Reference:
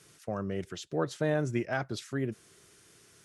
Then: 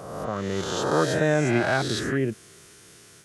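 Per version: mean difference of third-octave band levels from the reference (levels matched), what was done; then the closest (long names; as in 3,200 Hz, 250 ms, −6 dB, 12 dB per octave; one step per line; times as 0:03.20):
7.0 dB: peak hold with a rise ahead of every peak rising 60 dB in 1.44 s
automatic gain control gain up to 4 dB
level +2 dB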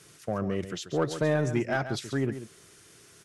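3.0 dB: in parallel at −4 dB: hard clipping −27 dBFS, distortion −10 dB
on the sum: single-tap delay 137 ms −11 dB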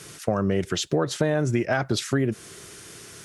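4.5 dB: in parallel at +1.5 dB: brickwall limiter −24 dBFS, peak gain reduction 7.5 dB
on the sum: downward compressor, threshold −28 dBFS, peak gain reduction 8.5 dB
level +9 dB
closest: second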